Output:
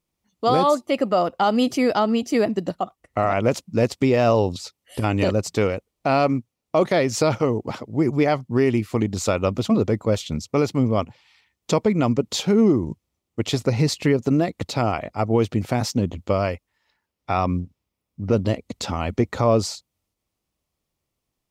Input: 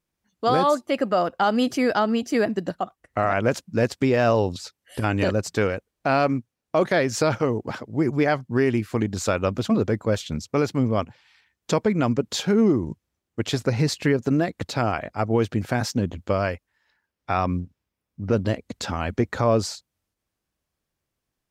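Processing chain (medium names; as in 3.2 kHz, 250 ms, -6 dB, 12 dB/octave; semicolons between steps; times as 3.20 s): peaking EQ 1.6 kHz -11 dB 0.27 oct; trim +2 dB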